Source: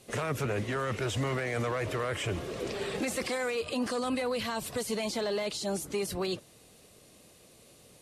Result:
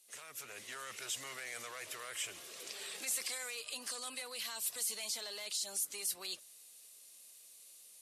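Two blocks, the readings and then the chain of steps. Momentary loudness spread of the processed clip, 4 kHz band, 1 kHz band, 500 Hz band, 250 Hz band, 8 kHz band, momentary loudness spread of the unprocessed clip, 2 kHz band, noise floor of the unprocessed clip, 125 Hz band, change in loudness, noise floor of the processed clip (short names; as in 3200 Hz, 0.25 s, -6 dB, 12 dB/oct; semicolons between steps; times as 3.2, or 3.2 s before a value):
19 LU, -3.0 dB, -14.5 dB, -21.0 dB, -26.5 dB, +3.0 dB, 3 LU, -9.0 dB, -58 dBFS, under -30 dB, -7.0 dB, -58 dBFS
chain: differentiator; AGC gain up to 7.5 dB; gain -5 dB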